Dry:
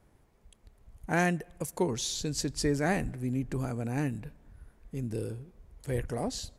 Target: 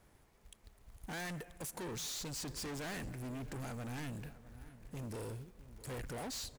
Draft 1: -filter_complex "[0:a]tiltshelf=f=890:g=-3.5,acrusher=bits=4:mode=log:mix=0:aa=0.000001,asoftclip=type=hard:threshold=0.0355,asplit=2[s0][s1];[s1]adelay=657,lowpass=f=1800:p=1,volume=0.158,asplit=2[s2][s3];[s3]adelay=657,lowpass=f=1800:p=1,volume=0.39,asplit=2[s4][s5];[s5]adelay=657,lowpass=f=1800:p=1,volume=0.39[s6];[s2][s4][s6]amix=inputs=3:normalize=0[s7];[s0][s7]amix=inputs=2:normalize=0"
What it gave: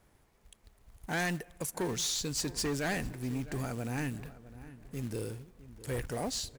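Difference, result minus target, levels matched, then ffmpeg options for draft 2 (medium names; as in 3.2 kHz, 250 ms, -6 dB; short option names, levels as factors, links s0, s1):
hard clipper: distortion -7 dB
-filter_complex "[0:a]tiltshelf=f=890:g=-3.5,acrusher=bits=4:mode=log:mix=0:aa=0.000001,asoftclip=type=hard:threshold=0.00891,asplit=2[s0][s1];[s1]adelay=657,lowpass=f=1800:p=1,volume=0.158,asplit=2[s2][s3];[s3]adelay=657,lowpass=f=1800:p=1,volume=0.39,asplit=2[s4][s5];[s5]adelay=657,lowpass=f=1800:p=1,volume=0.39[s6];[s2][s4][s6]amix=inputs=3:normalize=0[s7];[s0][s7]amix=inputs=2:normalize=0"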